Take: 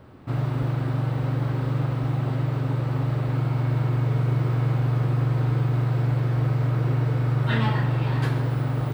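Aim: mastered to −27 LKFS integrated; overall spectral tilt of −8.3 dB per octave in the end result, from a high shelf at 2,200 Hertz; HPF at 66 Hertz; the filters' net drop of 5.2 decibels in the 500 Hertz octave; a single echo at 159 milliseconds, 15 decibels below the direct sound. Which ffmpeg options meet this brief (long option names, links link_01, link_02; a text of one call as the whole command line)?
ffmpeg -i in.wav -af "highpass=66,equalizer=frequency=500:width_type=o:gain=-6.5,highshelf=frequency=2200:gain=-5,aecho=1:1:159:0.178,volume=-3dB" out.wav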